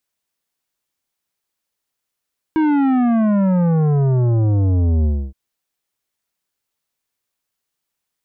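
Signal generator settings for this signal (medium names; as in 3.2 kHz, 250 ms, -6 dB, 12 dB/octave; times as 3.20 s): sub drop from 320 Hz, over 2.77 s, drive 11.5 dB, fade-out 0.28 s, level -14 dB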